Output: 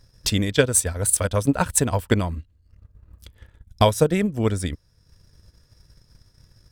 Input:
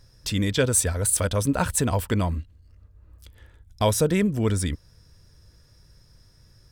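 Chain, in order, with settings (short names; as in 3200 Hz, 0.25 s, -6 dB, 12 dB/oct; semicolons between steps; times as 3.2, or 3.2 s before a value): transient shaper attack +9 dB, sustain -6 dB; gain -1 dB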